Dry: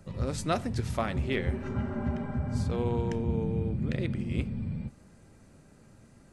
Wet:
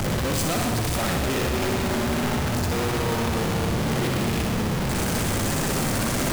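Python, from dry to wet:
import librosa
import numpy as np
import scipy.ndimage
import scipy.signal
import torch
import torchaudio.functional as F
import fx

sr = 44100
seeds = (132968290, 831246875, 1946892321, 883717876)

p1 = np.sign(x) * np.sqrt(np.mean(np.square(x)))
p2 = p1 + fx.echo_thinned(p1, sr, ms=62, feedback_pct=78, hz=200.0, wet_db=-6, dry=0)
y = p2 * librosa.db_to_amplitude(6.5)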